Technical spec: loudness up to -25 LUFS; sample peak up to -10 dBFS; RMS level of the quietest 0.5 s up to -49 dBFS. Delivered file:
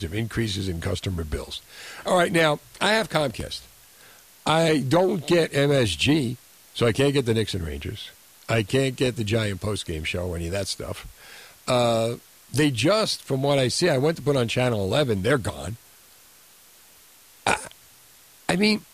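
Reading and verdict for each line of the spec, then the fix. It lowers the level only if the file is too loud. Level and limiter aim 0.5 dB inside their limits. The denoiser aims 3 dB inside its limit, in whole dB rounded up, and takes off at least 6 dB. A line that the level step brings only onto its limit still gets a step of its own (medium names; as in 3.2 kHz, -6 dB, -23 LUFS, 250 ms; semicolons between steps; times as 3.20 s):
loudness -23.5 LUFS: fail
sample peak -5.5 dBFS: fail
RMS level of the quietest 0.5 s -52 dBFS: pass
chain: trim -2 dB; peak limiter -10.5 dBFS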